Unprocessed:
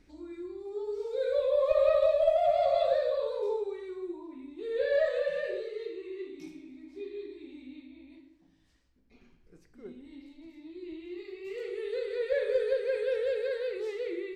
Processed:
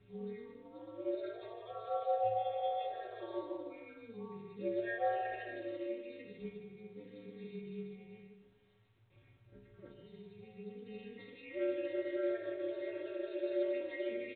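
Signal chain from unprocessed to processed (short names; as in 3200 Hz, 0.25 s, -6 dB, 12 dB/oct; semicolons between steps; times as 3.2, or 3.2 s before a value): compressor 6:1, threshold -28 dBFS, peak gain reduction 8.5 dB; limiter -29.5 dBFS, peak gain reduction 8 dB; metallic resonator 150 Hz, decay 0.59 s, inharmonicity 0.008; ring modulator 110 Hz; feedback echo 0.151 s, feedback 17%, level -9.5 dB; gain +14.5 dB; µ-law 64 kbps 8000 Hz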